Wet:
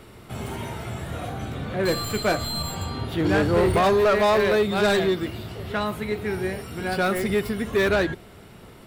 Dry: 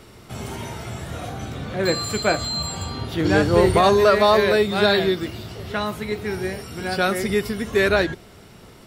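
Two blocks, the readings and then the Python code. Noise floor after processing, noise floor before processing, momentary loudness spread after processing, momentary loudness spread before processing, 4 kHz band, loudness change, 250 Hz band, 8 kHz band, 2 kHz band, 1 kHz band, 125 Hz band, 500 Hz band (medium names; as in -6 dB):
-46 dBFS, -46 dBFS, 14 LU, 17 LU, -5.0 dB, -3.5 dB, -1.5 dB, -4.0 dB, -3.0 dB, -3.0 dB, -1.5 dB, -2.5 dB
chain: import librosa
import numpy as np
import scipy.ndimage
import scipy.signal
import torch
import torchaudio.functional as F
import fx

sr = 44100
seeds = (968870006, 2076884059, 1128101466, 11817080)

y = fx.tracing_dist(x, sr, depth_ms=0.051)
y = fx.peak_eq(y, sr, hz=5700.0, db=-7.5, octaves=0.84)
y = 10.0 ** (-14.0 / 20.0) * np.tanh(y / 10.0 ** (-14.0 / 20.0))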